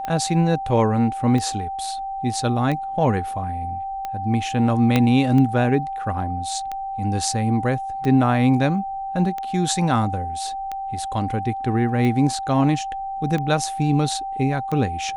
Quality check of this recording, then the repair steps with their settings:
tick 45 rpm -15 dBFS
tone 780 Hz -26 dBFS
4.96 pop -5 dBFS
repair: de-click; notch 780 Hz, Q 30

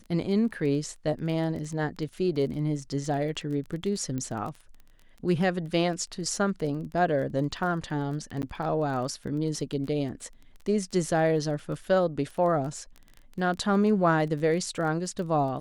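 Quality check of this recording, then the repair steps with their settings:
crackle 20/s -35 dBFS
4.18 pop -21 dBFS
8.42–8.43 gap 9.6 ms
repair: de-click; interpolate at 8.42, 9.6 ms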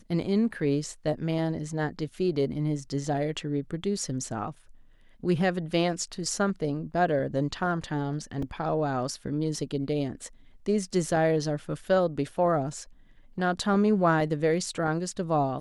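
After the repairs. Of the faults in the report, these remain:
none

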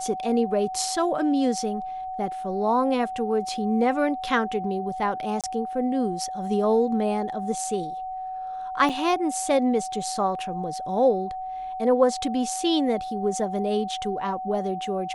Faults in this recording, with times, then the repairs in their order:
tone 750 Hz -30 dBFS
5.41–5.44 gap 27 ms
8.89–8.9 gap 6.3 ms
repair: notch 750 Hz, Q 30; interpolate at 5.41, 27 ms; interpolate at 8.89, 6.3 ms

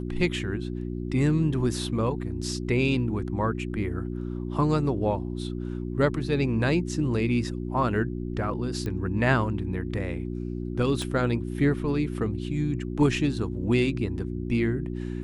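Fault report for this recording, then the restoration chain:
hum 60 Hz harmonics 6 -32 dBFS
8.86 pop -20 dBFS
11.02 pop -19 dBFS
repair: de-click; de-hum 60 Hz, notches 6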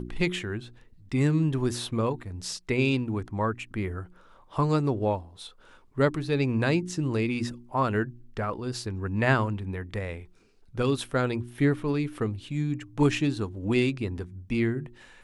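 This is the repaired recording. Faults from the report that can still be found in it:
11.02 pop

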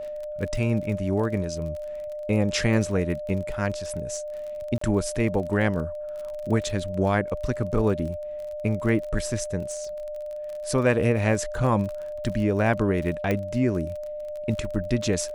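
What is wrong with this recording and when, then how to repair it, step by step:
crackle 32/s -33 dBFS
tone 600 Hz -31 dBFS
4.78–4.81 gap 34 ms
13.31 pop -13 dBFS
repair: de-click; notch 600 Hz, Q 30; interpolate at 4.78, 34 ms

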